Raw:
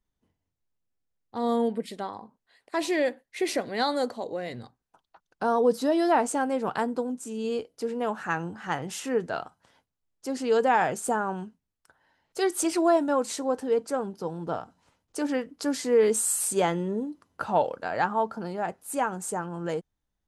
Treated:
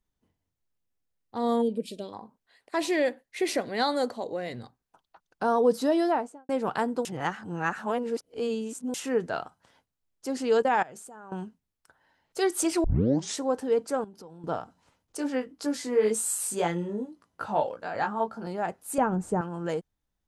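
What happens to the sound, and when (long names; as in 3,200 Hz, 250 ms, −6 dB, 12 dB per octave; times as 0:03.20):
0:01.62–0:02.13: gain on a spectral selection 650–2,300 Hz −17 dB
0:05.92–0:06.49: fade out and dull
0:07.05–0:08.94: reverse
0:10.62–0:11.32: output level in coarse steps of 23 dB
0:12.84: tape start 0.53 s
0:14.04–0:14.44: downward compressor 4 to 1, threshold −45 dBFS
0:15.17–0:18.47: chorus effect 1.9 Hz, delay 17 ms, depth 2.8 ms
0:18.98–0:19.41: spectral tilt −4 dB per octave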